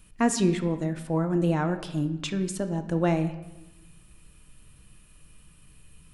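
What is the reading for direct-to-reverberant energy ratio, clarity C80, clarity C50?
8.0 dB, 13.5 dB, 11.0 dB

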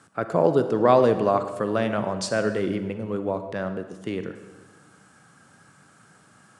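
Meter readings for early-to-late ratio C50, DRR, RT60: 10.0 dB, 9.0 dB, 1.3 s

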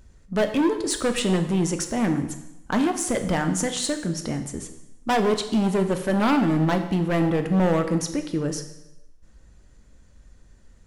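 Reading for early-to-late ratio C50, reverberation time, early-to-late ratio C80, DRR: 9.5 dB, 0.90 s, 11.5 dB, 6.5 dB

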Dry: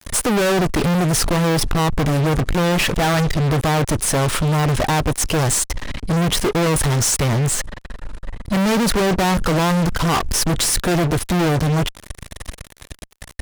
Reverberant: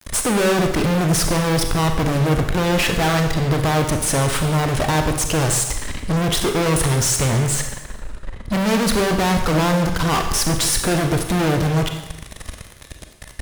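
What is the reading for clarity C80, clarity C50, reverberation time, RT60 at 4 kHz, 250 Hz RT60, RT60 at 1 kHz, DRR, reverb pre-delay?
9.0 dB, 6.5 dB, 0.95 s, 0.95 s, 0.95 s, 0.95 s, 5.0 dB, 30 ms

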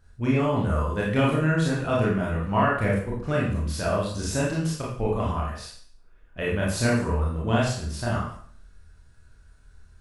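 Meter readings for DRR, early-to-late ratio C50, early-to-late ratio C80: −5.5 dB, 2.5 dB, 6.5 dB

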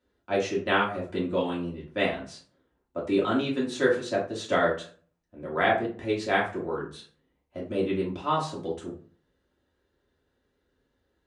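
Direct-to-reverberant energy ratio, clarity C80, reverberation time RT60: −5.5 dB, 13.0 dB, 0.45 s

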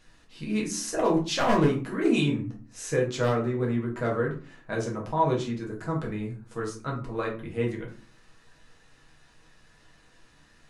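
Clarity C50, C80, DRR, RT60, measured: 8.5 dB, 13.5 dB, −3.0 dB, 0.40 s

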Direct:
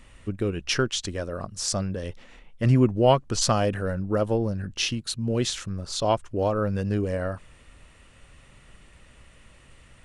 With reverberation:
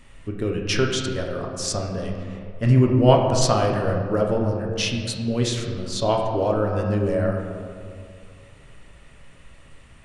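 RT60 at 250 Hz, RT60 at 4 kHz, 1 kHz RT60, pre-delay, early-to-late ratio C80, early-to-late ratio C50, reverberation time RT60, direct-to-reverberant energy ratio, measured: 2.4 s, 1.1 s, 2.1 s, 7 ms, 5.0 dB, 4.0 dB, 2.3 s, 0.5 dB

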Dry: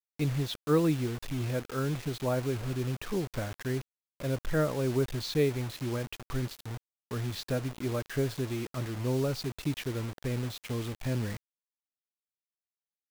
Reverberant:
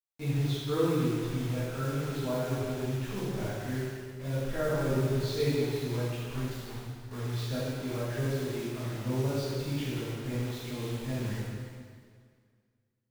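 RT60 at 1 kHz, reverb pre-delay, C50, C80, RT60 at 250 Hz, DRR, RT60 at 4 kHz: 2.0 s, 5 ms, −3.0 dB, −1.0 dB, 2.0 s, −10.5 dB, 1.9 s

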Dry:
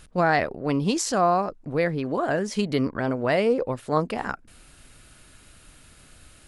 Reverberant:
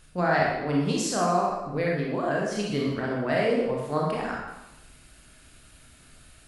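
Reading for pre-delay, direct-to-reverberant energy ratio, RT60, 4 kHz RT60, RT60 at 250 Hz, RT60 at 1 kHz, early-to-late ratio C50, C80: 18 ms, −3.5 dB, 0.90 s, 0.85 s, 0.90 s, 0.95 s, 0.5 dB, 3.5 dB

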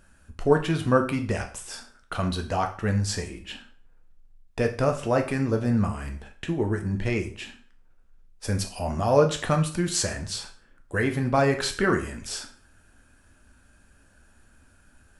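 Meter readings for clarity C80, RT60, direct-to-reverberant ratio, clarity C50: 15.5 dB, 0.45 s, 4.0 dB, 11.0 dB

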